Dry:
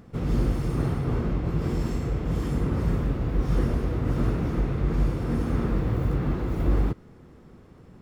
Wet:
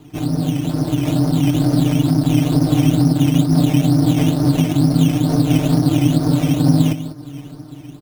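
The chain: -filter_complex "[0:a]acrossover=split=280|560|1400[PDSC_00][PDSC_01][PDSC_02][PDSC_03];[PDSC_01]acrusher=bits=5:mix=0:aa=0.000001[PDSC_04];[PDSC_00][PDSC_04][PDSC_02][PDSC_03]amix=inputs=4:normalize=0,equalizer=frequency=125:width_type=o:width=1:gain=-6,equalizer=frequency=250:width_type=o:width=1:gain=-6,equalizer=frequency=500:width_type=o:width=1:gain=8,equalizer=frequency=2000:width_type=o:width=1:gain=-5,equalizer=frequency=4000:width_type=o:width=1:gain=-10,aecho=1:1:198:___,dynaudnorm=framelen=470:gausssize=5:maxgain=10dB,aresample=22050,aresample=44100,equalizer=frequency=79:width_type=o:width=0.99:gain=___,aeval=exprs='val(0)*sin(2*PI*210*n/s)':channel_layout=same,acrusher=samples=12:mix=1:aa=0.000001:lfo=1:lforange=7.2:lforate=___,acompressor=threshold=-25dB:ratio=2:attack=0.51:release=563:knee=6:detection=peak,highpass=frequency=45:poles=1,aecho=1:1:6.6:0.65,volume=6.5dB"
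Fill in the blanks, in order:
0.15, 15, 2.2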